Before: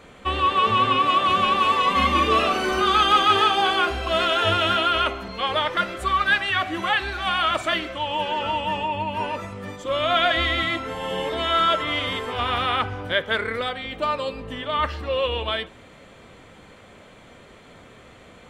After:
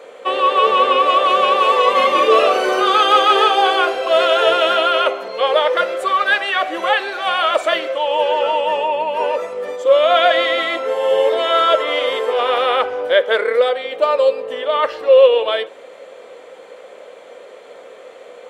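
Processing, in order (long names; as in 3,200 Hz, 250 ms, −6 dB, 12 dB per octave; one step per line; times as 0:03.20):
high-pass with resonance 500 Hz, resonance Q 4.9
level +3 dB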